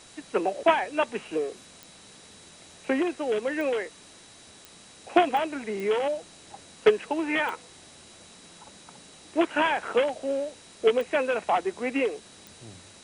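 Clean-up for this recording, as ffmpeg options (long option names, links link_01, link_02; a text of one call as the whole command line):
ffmpeg -i in.wav -af "adeclick=threshold=4,bandreject=frequency=3900:width=30,afwtdn=0.0035" out.wav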